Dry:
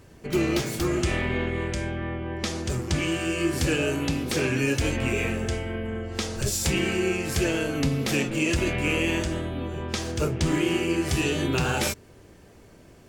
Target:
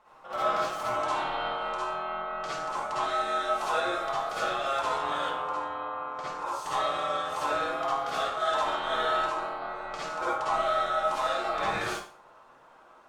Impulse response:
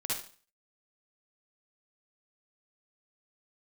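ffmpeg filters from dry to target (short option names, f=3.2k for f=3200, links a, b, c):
-filter_complex "[0:a]asetnsamples=n=441:p=0,asendcmd='5.25 lowpass f 1100;6.66 lowpass f 2400',lowpass=f=2.8k:p=1,aeval=exprs='val(0)*sin(2*PI*960*n/s)':c=same[a];[1:a]atrim=start_sample=2205[b];[a][b]afir=irnorm=-1:irlink=0,volume=-5dB"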